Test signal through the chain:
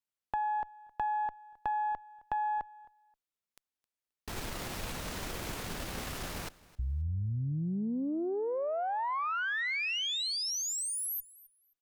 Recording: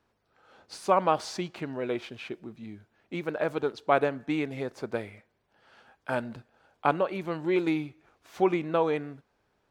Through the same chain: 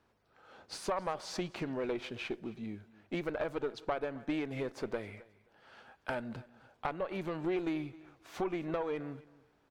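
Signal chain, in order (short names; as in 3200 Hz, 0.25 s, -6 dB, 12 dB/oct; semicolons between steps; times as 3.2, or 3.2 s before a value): compressor 5:1, threshold -32 dBFS; high shelf 5700 Hz -3.5 dB; tube stage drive 26 dB, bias 0.55; on a send: feedback echo 0.265 s, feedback 19%, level -21 dB; on the sum: gain +3.5 dB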